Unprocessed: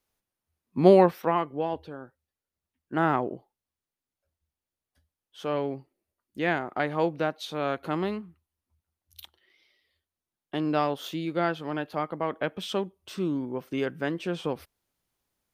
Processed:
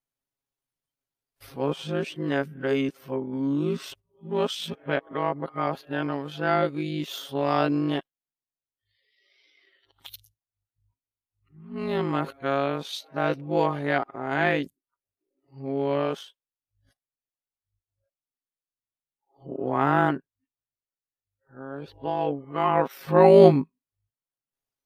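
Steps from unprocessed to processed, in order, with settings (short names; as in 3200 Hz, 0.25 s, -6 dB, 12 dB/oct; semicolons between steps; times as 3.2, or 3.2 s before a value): whole clip reversed; granular stretch 1.6×, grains 39 ms; spectral noise reduction 14 dB; gain +3.5 dB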